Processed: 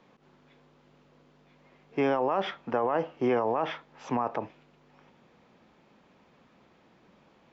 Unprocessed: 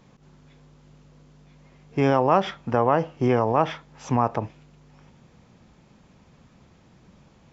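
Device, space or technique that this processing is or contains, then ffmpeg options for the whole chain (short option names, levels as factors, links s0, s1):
DJ mixer with the lows and highs turned down: -filter_complex "[0:a]acrossover=split=230 4400:gain=0.158 1 0.178[s0][s1][s2];[s0][s1][s2]amix=inputs=3:normalize=0,alimiter=limit=0.168:level=0:latency=1:release=12,volume=0.841"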